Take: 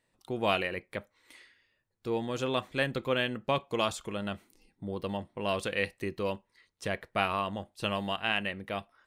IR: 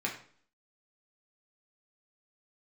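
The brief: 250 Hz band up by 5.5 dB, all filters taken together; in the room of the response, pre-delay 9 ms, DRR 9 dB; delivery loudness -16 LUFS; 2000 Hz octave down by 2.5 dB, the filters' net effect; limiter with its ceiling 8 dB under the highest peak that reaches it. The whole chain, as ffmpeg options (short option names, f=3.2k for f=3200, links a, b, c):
-filter_complex "[0:a]equalizer=f=250:t=o:g=7,equalizer=f=2k:t=o:g=-3.5,alimiter=limit=-20dB:level=0:latency=1,asplit=2[a][b];[1:a]atrim=start_sample=2205,adelay=9[c];[b][c]afir=irnorm=-1:irlink=0,volume=-14.5dB[d];[a][d]amix=inputs=2:normalize=0,volume=17dB"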